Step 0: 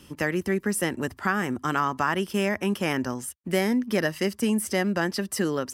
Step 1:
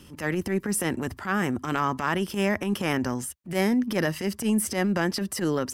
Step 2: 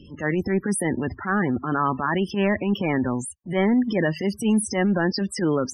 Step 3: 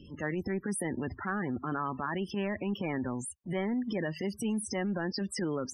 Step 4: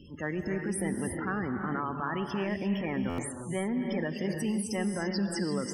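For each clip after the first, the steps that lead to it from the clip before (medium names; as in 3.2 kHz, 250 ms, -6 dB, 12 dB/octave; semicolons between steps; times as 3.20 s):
bass shelf 250 Hz +4.5 dB; transient shaper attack -12 dB, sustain +3 dB
saturation -14.5 dBFS, distortion -22 dB; loudest bins only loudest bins 32; trim +4.5 dB
compression 4:1, threshold -25 dBFS, peak gain reduction 7.5 dB; trim -5 dB
gated-style reverb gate 370 ms rising, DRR 4.5 dB; buffer glitch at 3.09 s, samples 512, times 7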